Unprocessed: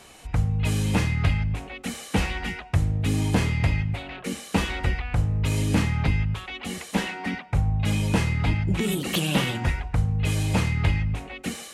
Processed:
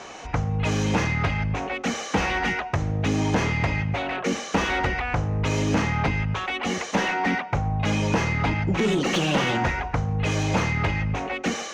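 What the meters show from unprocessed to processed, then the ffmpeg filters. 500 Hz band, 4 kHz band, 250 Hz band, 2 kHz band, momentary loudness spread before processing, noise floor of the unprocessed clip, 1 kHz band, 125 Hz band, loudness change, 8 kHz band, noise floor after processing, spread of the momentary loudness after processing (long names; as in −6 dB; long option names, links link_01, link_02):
+6.0 dB, +1.5 dB, +1.5 dB, +5.0 dB, 8 LU, −44 dBFS, +8.0 dB, −2.0 dB, +1.0 dB, +1.0 dB, −36 dBFS, 4 LU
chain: -filter_complex "[0:a]lowpass=frequency=6200:width_type=q:width=6,highshelf=frequency=2800:gain=-11.5,acompressor=threshold=-23dB:ratio=3,asplit=2[link_01][link_02];[link_02]highpass=frequency=720:poles=1,volume=21dB,asoftclip=type=tanh:threshold=-12dB[link_03];[link_01][link_03]amix=inputs=2:normalize=0,lowpass=frequency=1600:poles=1,volume=-6dB,volume=1.5dB"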